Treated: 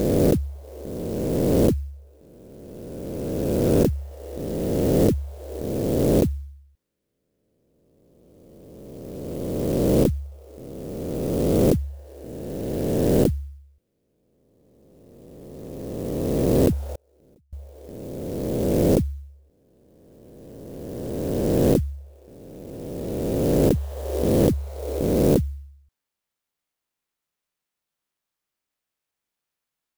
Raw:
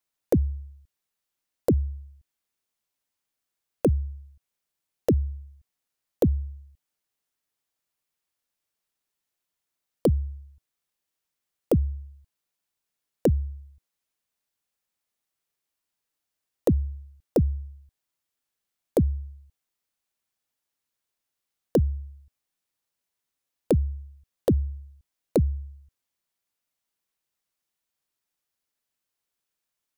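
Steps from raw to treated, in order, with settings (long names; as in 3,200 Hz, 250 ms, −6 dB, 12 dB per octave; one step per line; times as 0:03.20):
peak hold with a rise ahead of every peak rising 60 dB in 2.80 s
0:16.91–0:17.53: gate with flip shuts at −19 dBFS, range −38 dB
converter with an unsteady clock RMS 0.047 ms
level −3.5 dB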